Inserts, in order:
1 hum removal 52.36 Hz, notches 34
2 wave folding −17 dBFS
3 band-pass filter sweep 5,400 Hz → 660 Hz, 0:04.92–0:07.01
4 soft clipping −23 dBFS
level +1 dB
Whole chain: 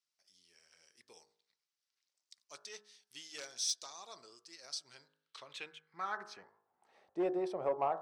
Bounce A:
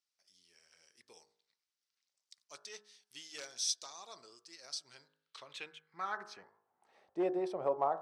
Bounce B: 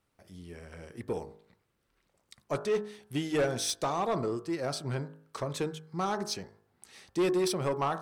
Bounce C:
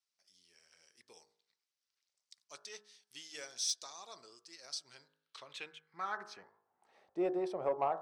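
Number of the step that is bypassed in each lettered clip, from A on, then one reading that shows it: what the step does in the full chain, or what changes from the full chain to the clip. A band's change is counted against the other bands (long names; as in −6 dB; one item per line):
4, change in crest factor +3.0 dB
3, 125 Hz band +17.0 dB
2, distortion level −21 dB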